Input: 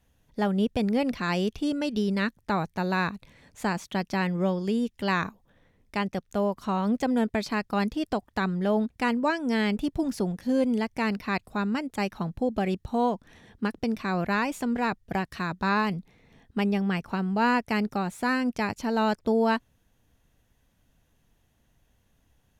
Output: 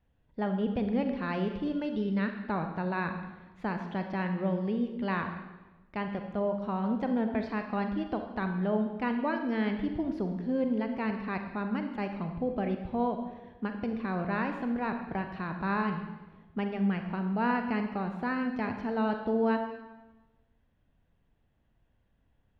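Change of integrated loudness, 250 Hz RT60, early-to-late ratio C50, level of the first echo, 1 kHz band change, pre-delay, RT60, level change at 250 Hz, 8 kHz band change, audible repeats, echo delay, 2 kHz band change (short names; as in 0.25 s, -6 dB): -4.5 dB, 1.2 s, 7.0 dB, none, -5.0 dB, 34 ms, 1.1 s, -3.5 dB, under -25 dB, none, none, -6.0 dB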